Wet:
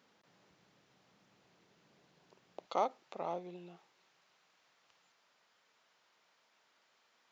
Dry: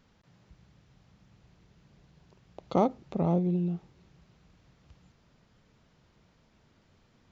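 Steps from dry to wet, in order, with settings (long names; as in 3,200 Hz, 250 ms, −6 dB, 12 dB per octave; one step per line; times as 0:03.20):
high-pass filter 320 Hz 12 dB per octave, from 0:02.66 800 Hz
level −1 dB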